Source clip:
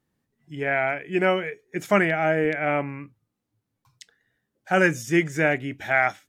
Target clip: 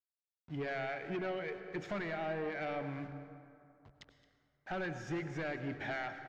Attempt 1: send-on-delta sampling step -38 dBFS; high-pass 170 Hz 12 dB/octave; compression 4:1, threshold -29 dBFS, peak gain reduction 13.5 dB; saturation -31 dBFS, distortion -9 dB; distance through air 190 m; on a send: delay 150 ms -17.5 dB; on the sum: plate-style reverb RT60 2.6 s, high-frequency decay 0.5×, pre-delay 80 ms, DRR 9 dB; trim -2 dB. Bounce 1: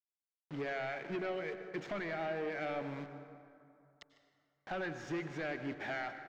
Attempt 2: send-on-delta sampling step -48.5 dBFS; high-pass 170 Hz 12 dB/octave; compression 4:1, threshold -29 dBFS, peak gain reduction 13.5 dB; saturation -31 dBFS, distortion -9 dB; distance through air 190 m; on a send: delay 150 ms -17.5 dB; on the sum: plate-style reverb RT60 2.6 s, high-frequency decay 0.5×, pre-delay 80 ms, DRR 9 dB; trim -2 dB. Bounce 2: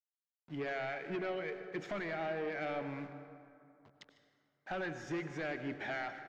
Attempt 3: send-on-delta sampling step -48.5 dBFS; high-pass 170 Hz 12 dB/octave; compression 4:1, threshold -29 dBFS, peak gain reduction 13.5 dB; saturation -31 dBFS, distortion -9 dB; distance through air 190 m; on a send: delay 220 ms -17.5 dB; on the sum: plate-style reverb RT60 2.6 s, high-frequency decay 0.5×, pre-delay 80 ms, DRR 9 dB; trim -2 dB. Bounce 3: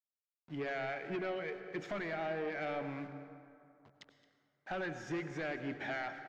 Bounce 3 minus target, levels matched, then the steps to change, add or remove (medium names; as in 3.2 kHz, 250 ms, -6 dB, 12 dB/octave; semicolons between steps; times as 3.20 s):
125 Hz band -3.5 dB
change: high-pass 44 Hz 12 dB/octave